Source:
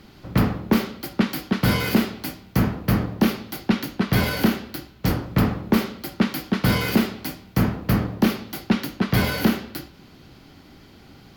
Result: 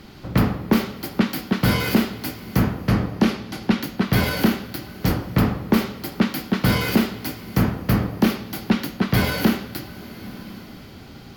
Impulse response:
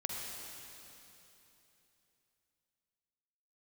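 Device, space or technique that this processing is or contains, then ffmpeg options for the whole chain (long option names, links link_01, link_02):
ducked reverb: -filter_complex "[0:a]asettb=1/sr,asplit=3[link_01][link_02][link_03];[link_01]atrim=end=2.674[link_04];[link_02]atrim=start=2.67:end=3.63,asetpts=PTS-STARTPTS,afade=type=in:duration=0.004:curve=qsin,afade=type=out:start_time=0.956:duration=0.004:curve=qsin,lowpass=8500[link_05];[link_03]atrim=start=3.626[link_06];[link_04][link_05]acrossfade=duration=0.004:curve1=hsin:curve2=qsin[link_07];[link_07][link_06]acrossfade=duration=0.004:curve1=qsin:curve2=hsin,asplit=3[link_08][link_09][link_10];[1:a]atrim=start_sample=2205[link_11];[link_09][link_11]afir=irnorm=-1:irlink=0[link_12];[link_10]apad=whole_len=501034[link_13];[link_12][link_13]sidechaincompress=threshold=-30dB:ratio=8:attack=16:release=844,volume=-2dB[link_14];[link_08][link_14]amix=inputs=2:normalize=0"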